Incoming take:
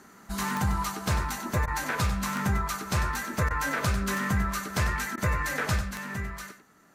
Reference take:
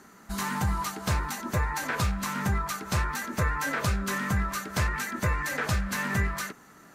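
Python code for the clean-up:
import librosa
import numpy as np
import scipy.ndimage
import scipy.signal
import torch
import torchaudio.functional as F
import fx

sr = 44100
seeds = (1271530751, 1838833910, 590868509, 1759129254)

y = fx.fix_declick_ar(x, sr, threshold=10.0)
y = fx.fix_interpolate(y, sr, at_s=(1.66, 3.49, 5.16), length_ms=14.0)
y = fx.fix_echo_inverse(y, sr, delay_ms=97, level_db=-10.0)
y = fx.fix_level(y, sr, at_s=5.81, step_db=7.5)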